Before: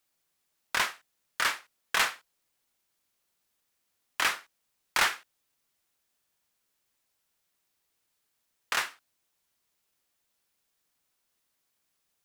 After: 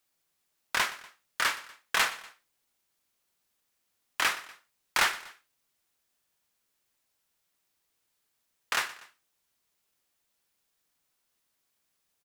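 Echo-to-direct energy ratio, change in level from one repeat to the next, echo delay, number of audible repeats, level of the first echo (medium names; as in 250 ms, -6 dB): -17.0 dB, -6.0 dB, 121 ms, 2, -18.0 dB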